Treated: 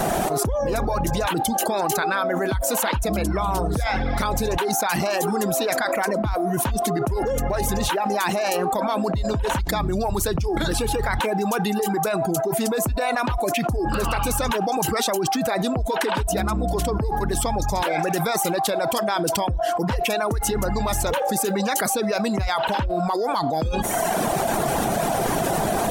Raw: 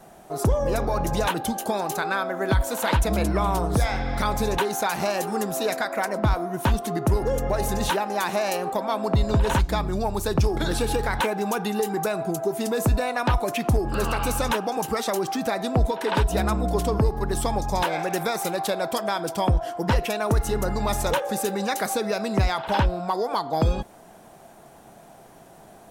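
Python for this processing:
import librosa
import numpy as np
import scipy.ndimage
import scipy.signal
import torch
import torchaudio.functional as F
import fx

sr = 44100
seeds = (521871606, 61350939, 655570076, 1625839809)

y = fx.dereverb_blind(x, sr, rt60_s=0.74)
y = fx.env_flatten(y, sr, amount_pct=100)
y = y * librosa.db_to_amplitude(-5.5)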